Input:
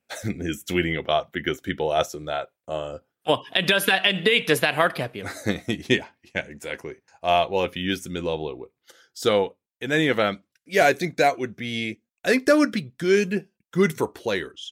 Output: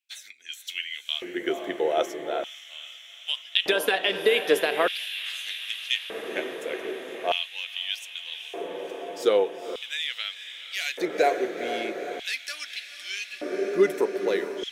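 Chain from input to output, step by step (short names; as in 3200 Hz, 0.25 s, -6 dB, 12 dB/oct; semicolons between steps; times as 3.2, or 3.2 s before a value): diffused feedback echo 0.481 s, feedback 75%, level -10 dB; LFO high-pass square 0.41 Hz 390–3000 Hz; gain -6 dB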